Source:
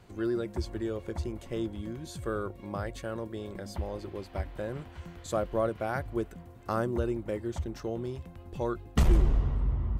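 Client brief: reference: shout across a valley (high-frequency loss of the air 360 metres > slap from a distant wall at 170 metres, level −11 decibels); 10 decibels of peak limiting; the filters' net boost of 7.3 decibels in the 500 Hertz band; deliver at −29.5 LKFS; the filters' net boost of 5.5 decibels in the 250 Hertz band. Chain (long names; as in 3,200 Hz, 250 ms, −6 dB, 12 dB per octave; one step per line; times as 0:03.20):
parametric band 250 Hz +4.5 dB
parametric band 500 Hz +9 dB
brickwall limiter −19 dBFS
high-frequency loss of the air 360 metres
slap from a distant wall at 170 metres, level −11 dB
level +1.5 dB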